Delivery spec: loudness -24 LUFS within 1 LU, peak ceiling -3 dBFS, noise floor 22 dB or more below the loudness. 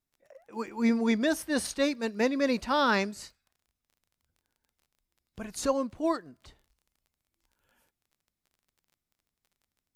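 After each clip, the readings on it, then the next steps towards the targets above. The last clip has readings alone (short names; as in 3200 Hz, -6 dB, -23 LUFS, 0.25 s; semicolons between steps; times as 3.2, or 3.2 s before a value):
ticks 26/s; loudness -28.5 LUFS; peak -15.0 dBFS; loudness target -24.0 LUFS
-> de-click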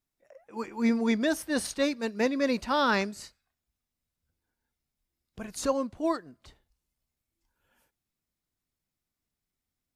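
ticks 0/s; loudness -28.5 LUFS; peak -15.0 dBFS; loudness target -24.0 LUFS
-> gain +4.5 dB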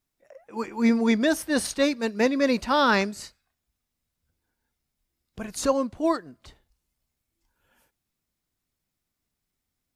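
loudness -24.0 LUFS; peak -10.5 dBFS; noise floor -83 dBFS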